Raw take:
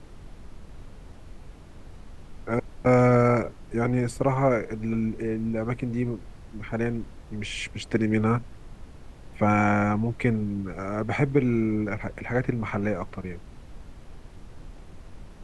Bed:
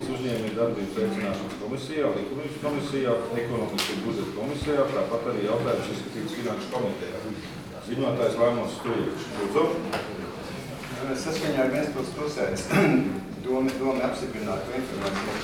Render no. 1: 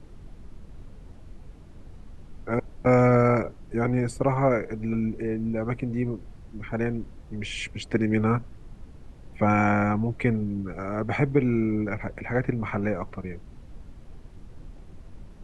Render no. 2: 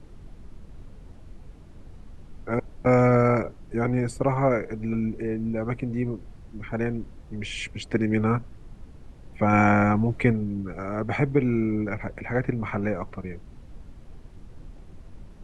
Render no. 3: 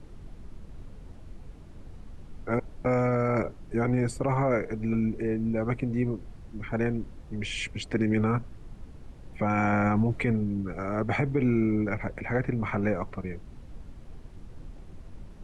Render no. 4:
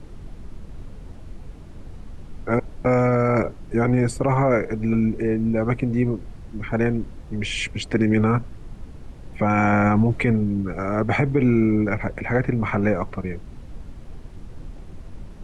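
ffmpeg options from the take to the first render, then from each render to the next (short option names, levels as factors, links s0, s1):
-af "afftdn=nr=6:nf=-47"
-filter_complex "[0:a]asplit=3[s0][s1][s2];[s0]atrim=end=9.532[s3];[s1]atrim=start=9.528:end=10.322,asetpts=PTS-STARTPTS,volume=1.41[s4];[s2]atrim=start=10.318[s5];[s3][s4]acrossfade=d=0.004:c1=hsin:c2=hsin[s6];[s6][s5]acrossfade=d=0.004:c1=hsin:c2=hsin"
-af "alimiter=limit=0.168:level=0:latency=1:release=26"
-af "volume=2.11"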